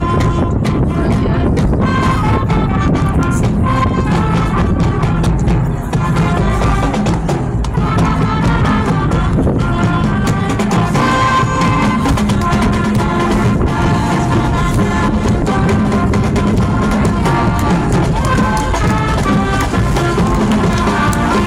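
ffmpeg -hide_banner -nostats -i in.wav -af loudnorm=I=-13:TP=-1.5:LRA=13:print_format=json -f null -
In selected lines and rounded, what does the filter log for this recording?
"input_i" : "-13.7",
"input_tp" : "-5.8",
"input_lra" : "1.0",
"input_thresh" : "-23.7",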